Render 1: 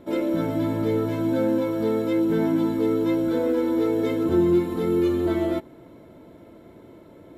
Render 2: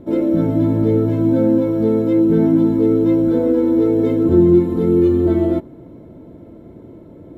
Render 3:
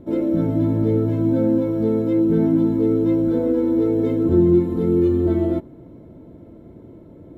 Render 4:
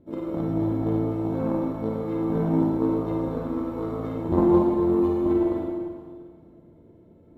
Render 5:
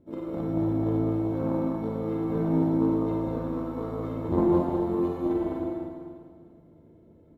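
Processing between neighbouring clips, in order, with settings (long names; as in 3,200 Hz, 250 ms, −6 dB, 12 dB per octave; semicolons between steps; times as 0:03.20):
tilt shelving filter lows +8.5 dB, about 680 Hz; hum removal 197.5 Hz, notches 8; level +3 dB
low-shelf EQ 170 Hz +3.5 dB; level −4.5 dB
harmonic generator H 3 −12 dB, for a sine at −5 dBFS; four-comb reverb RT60 1.9 s, DRR −2 dB; level −1.5 dB
single-tap delay 202 ms −5.5 dB; level −3.5 dB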